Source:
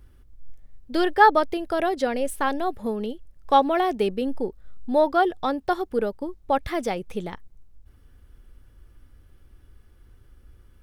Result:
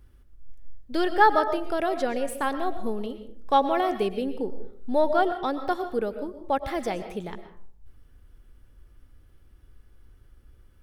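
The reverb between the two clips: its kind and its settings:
comb and all-pass reverb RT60 0.57 s, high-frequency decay 0.5×, pre-delay 80 ms, DRR 9.5 dB
level −3 dB

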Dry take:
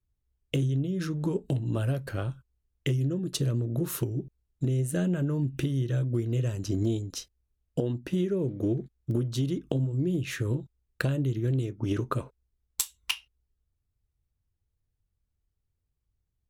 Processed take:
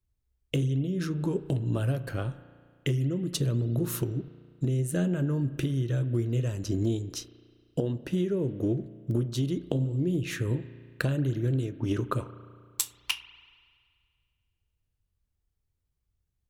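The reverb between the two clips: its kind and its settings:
spring reverb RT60 2 s, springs 34 ms, chirp 60 ms, DRR 14 dB

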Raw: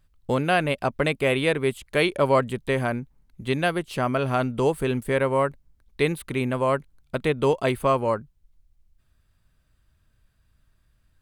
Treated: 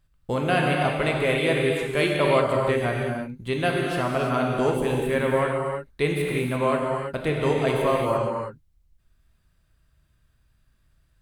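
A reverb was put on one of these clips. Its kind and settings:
reverb whose tail is shaped and stops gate 370 ms flat, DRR −1.5 dB
level −3 dB

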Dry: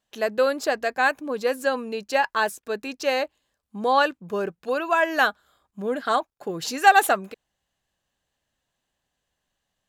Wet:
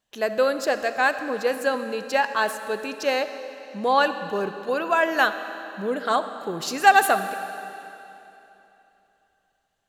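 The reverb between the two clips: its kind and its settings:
comb and all-pass reverb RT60 3.1 s, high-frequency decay 0.95×, pre-delay 10 ms, DRR 9.5 dB

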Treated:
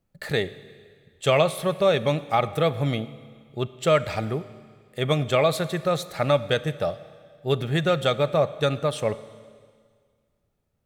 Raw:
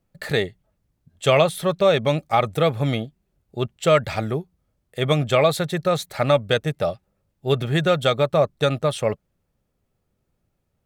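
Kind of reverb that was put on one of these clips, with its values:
four-comb reverb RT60 1.9 s, combs from 28 ms, DRR 15 dB
level −3 dB

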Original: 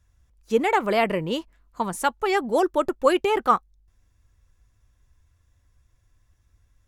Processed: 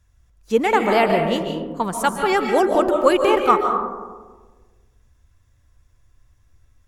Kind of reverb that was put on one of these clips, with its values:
comb and all-pass reverb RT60 1.4 s, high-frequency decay 0.3×, pre-delay 105 ms, DRR 3.5 dB
level +3 dB

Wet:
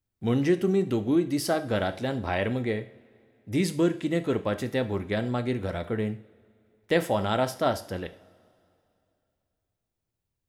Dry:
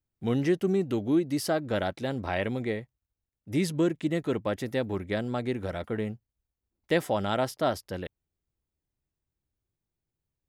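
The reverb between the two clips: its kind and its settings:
coupled-rooms reverb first 0.43 s, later 2.7 s, from −22 dB, DRR 8.5 dB
level +1.5 dB

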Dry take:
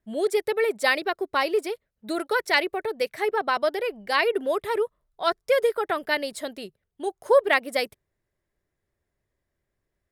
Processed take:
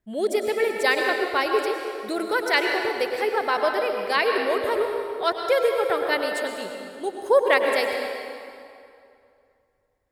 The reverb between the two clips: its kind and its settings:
dense smooth reverb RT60 2.5 s, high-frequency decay 0.75×, pre-delay 90 ms, DRR 2.5 dB

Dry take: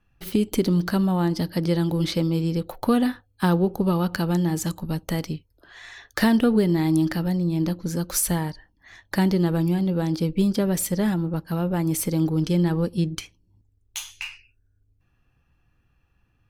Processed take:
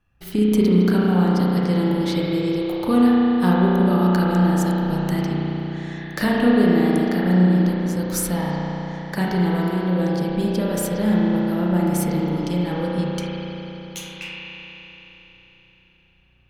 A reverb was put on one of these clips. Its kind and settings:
spring reverb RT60 4 s, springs 33 ms, chirp 50 ms, DRR −6 dB
level −2.5 dB

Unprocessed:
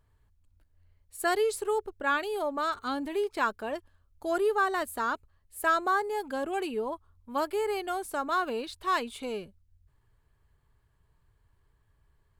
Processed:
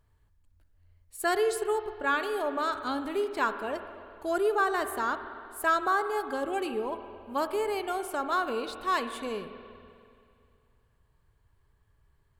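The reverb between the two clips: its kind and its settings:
spring reverb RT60 2.4 s, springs 47/58 ms, chirp 70 ms, DRR 9 dB

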